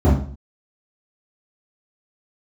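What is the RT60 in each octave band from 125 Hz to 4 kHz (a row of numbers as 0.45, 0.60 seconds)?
0.50, 0.55, 0.50, 0.45, 0.40, 0.40 seconds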